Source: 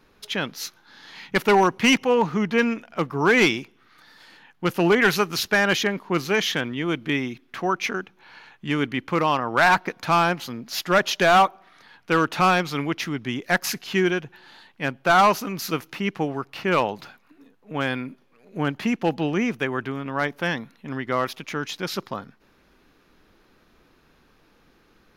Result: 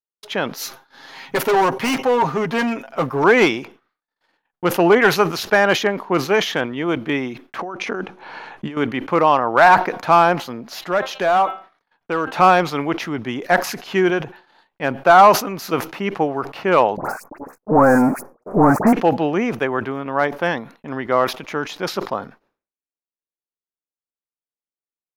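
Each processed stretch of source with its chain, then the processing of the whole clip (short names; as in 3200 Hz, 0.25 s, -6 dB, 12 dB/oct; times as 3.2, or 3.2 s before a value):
0.54–3.24 high shelf 6700 Hz +9.5 dB + comb 7.5 ms, depth 62% + hard clip -19.5 dBFS
7.59–8.77 bell 300 Hz +3.5 dB 2.5 oct + negative-ratio compressor -31 dBFS + brick-wall FIR low-pass 12000 Hz
10.73–12.34 de-hum 263.6 Hz, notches 16 + compressor 1.5:1, threshold -34 dBFS
16.97–18.93 sample leveller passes 5 + Butterworth band-stop 3300 Hz, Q 0.52 + dispersion highs, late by 77 ms, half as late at 1700 Hz
whole clip: gate -46 dBFS, range -53 dB; bell 680 Hz +11.5 dB 2.4 oct; sustainer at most 150 dB/s; gain -2.5 dB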